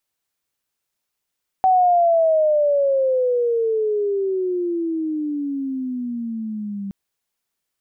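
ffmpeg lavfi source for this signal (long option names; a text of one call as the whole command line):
ffmpeg -f lavfi -i "aevalsrc='pow(10,(-11.5-14*t/5.27)/20)*sin(2*PI*759*5.27/(-23.5*log(2)/12)*(exp(-23.5*log(2)/12*t/5.27)-1))':duration=5.27:sample_rate=44100" out.wav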